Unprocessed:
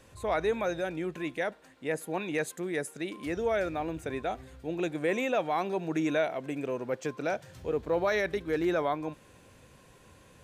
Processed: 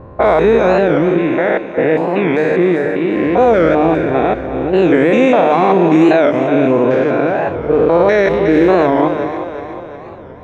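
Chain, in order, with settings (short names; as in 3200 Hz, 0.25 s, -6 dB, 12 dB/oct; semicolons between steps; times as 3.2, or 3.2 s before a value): stepped spectrum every 0.2 s; low-pass opened by the level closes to 780 Hz, open at -27.5 dBFS; LPF 1600 Hz 6 dB/oct; low shelf 150 Hz -7 dB; notches 50/100/150 Hz; on a send: split-band echo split 340 Hz, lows 0.154 s, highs 0.362 s, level -11 dB; on the sum: maximiser +26.5 dB; record warp 45 rpm, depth 160 cents; gain -1 dB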